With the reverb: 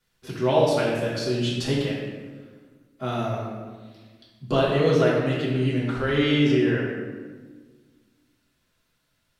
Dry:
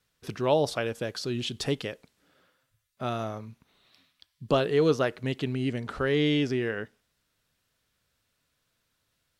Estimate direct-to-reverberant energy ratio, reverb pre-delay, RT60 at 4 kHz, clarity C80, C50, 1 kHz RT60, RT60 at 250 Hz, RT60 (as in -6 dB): -7.5 dB, 3 ms, 0.90 s, 2.5 dB, 0.0 dB, 1.3 s, 2.1 s, 1.5 s